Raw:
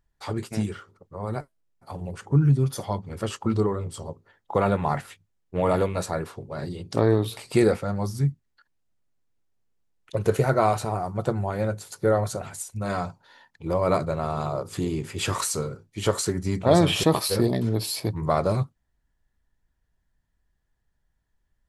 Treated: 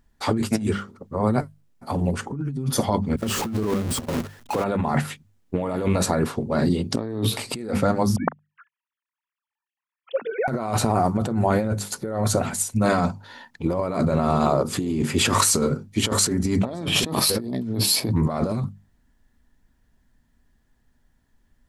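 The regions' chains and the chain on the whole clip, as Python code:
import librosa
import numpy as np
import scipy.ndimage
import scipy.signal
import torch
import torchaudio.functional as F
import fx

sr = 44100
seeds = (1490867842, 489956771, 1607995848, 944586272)

y = fx.chain(x, sr, fx.zero_step(step_db=-25.0),
    fx.gate_hold(open_db=-22.0, close_db=-24.0, hold_ms=71.0, range_db=-21, attack_ms=1.4, release_ms=100.0),
    fx.level_steps(step_db=12), at=(3.16, 4.64))
y = fx.chain(y, sr, fx.sine_speech(),
    fx.highpass(hz=620.0, slope=12), at=(8.16, 10.48))
y = fx.peak_eq(y, sr, hz=240.0, db=11.5, octaves=0.47)
y = fx.hum_notches(y, sr, base_hz=50, count=4)
y = fx.over_compress(y, sr, threshold_db=-28.0, ratio=-1.0)
y = y * librosa.db_to_amplitude(5.0)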